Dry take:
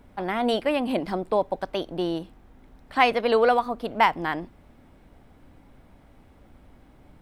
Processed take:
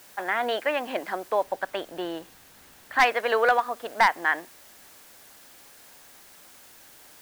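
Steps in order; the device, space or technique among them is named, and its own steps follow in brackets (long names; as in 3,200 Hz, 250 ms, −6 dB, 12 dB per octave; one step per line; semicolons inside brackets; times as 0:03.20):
drive-through speaker (band-pass filter 520–3,400 Hz; parametric band 1,700 Hz +10 dB 0.49 octaves; hard clipping −11.5 dBFS, distortion −14 dB; white noise bed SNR 23 dB)
0:01.43–0:02.99: bass and treble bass +7 dB, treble −3 dB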